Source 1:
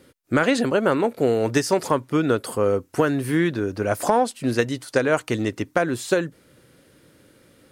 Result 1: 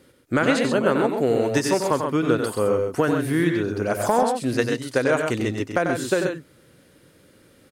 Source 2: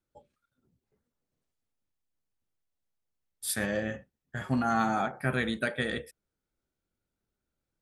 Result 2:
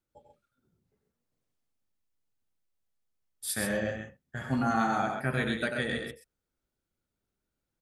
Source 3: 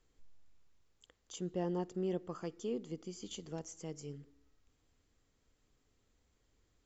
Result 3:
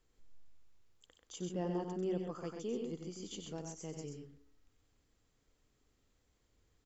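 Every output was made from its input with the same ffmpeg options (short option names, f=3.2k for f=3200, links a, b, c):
-af "aecho=1:1:93.29|131.2:0.447|0.501,volume=-1.5dB"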